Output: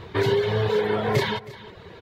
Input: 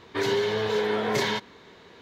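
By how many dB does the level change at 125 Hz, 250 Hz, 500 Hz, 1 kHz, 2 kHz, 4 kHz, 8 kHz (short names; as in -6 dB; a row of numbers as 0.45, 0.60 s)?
+11.0, +2.0, +3.0, +2.0, +0.5, -1.0, -5.0 dB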